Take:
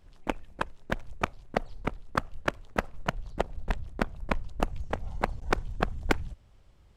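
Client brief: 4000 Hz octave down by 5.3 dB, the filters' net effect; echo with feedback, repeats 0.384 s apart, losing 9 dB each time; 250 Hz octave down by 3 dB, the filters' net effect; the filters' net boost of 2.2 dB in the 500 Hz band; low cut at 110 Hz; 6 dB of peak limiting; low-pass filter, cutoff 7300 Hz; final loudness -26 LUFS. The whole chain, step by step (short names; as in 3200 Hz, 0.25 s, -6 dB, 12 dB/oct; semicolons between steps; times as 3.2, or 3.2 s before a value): HPF 110 Hz; LPF 7300 Hz; bell 250 Hz -5 dB; bell 500 Hz +4 dB; bell 4000 Hz -7.5 dB; limiter -16 dBFS; feedback echo 0.384 s, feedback 35%, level -9 dB; gain +12 dB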